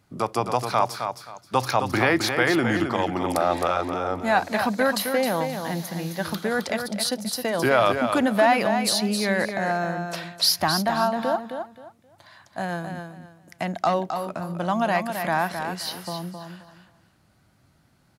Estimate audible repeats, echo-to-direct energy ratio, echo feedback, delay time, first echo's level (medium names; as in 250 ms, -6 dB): 3, -6.5 dB, 24%, 264 ms, -7.0 dB